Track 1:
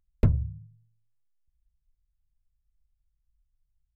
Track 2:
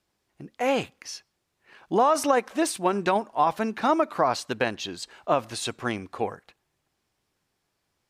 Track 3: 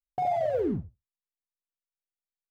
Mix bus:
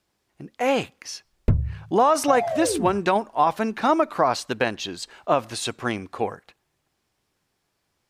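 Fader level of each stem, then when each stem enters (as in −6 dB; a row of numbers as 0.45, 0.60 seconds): +2.0, +2.5, +1.0 decibels; 1.25, 0.00, 2.10 seconds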